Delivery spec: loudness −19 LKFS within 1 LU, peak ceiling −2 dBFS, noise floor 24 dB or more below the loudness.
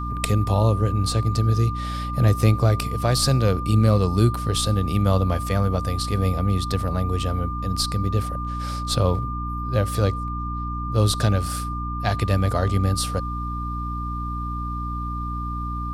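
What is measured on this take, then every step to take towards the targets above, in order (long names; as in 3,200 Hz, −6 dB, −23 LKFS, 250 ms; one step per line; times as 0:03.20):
mains hum 60 Hz; hum harmonics up to 300 Hz; level of the hum −27 dBFS; interfering tone 1,200 Hz; level of the tone −30 dBFS; integrated loudness −23.0 LKFS; sample peak −3.0 dBFS; target loudness −19.0 LKFS
→ mains-hum notches 60/120/180/240/300 Hz
notch filter 1,200 Hz, Q 30
level +4 dB
brickwall limiter −2 dBFS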